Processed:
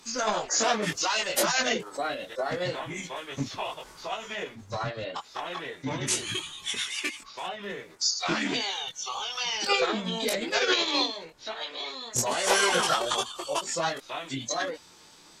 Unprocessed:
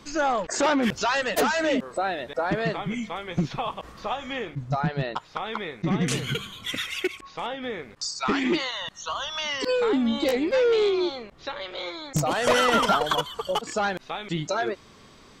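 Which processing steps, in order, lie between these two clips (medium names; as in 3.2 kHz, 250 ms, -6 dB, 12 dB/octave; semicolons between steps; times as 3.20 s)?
chorus voices 4, 0.45 Hz, delay 21 ms, depth 3.5 ms; tone controls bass -10 dB, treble +11 dB; formant-preserving pitch shift -4 st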